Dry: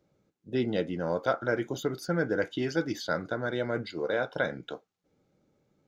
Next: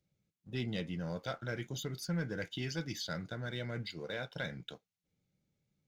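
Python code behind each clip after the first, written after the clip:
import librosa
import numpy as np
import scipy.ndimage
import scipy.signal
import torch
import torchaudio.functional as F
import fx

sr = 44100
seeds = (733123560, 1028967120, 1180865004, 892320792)

y = fx.band_shelf(x, sr, hz=620.0, db=-12.0, octaves=2.9)
y = fx.leveller(y, sr, passes=1)
y = y * librosa.db_to_amplitude(-4.5)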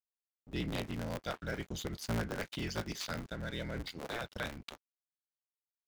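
y = fx.cycle_switch(x, sr, every=3, mode='inverted')
y = np.sign(y) * np.maximum(np.abs(y) - 10.0 ** (-56.0 / 20.0), 0.0)
y = y * librosa.db_to_amplitude(1.0)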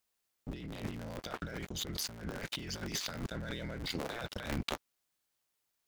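y = fx.over_compress(x, sr, threshold_db=-47.0, ratio=-1.0)
y = y * librosa.db_to_amplitude(6.5)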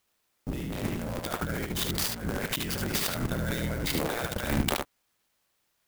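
y = x + 10.0 ** (-4.5 / 20.0) * np.pad(x, (int(74 * sr / 1000.0), 0))[:len(x)]
y = fx.clock_jitter(y, sr, seeds[0], jitter_ms=0.039)
y = y * librosa.db_to_amplitude(8.0)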